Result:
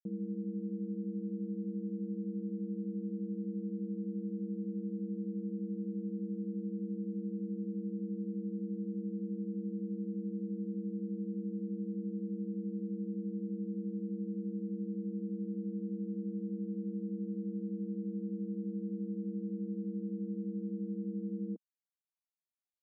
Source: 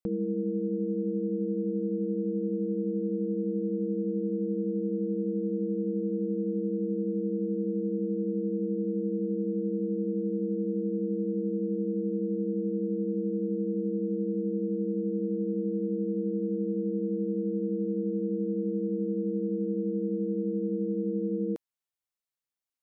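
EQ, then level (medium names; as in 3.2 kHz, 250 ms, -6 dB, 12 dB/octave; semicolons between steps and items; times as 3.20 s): ladder band-pass 230 Hz, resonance 45%; 0.0 dB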